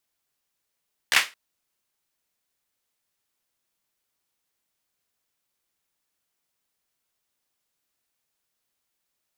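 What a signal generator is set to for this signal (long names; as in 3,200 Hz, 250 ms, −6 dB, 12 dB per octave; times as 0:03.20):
synth clap length 0.22 s, apart 14 ms, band 2,100 Hz, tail 0.25 s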